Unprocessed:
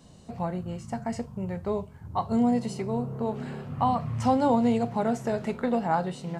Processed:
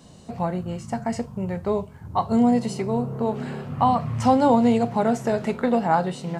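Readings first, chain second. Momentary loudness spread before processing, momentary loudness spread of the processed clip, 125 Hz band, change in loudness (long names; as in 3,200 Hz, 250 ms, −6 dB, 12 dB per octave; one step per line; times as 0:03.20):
11 LU, 11 LU, +4.0 dB, +5.0 dB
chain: low-shelf EQ 80 Hz −6 dB
level +5.5 dB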